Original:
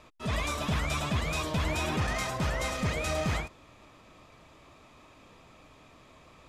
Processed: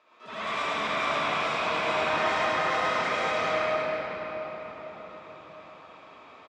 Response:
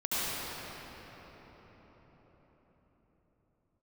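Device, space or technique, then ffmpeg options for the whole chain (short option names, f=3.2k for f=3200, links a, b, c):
station announcement: -filter_complex "[0:a]highpass=460,lowpass=4.1k,equalizer=f=1.4k:t=o:w=0.52:g=4,aecho=1:1:134.1|247.8:0.562|0.316[a];[1:a]atrim=start_sample=2205[b];[a][b]afir=irnorm=-1:irlink=0,volume=-5dB"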